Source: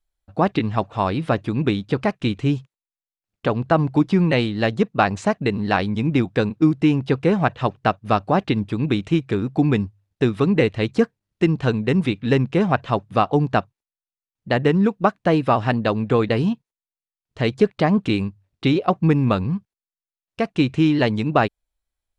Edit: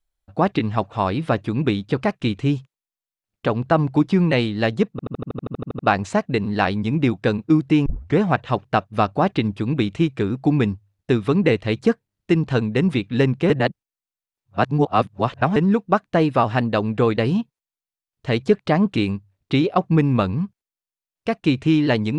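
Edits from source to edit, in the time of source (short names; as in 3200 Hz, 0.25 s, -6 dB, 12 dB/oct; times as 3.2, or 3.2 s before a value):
4.91 stutter 0.08 s, 12 plays
6.98 tape start 0.32 s
12.62–14.68 reverse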